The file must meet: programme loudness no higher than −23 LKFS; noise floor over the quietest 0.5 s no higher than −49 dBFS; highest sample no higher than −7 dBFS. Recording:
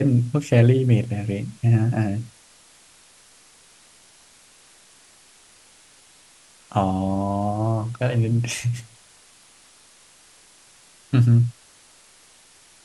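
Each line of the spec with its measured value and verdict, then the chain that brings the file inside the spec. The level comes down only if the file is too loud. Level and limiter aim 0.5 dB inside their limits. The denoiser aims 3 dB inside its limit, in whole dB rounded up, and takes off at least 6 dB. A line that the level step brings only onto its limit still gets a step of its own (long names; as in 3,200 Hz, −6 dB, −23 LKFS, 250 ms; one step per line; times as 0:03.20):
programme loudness −21.5 LKFS: out of spec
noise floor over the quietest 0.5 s −53 dBFS: in spec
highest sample −2.5 dBFS: out of spec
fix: level −2 dB
brickwall limiter −7.5 dBFS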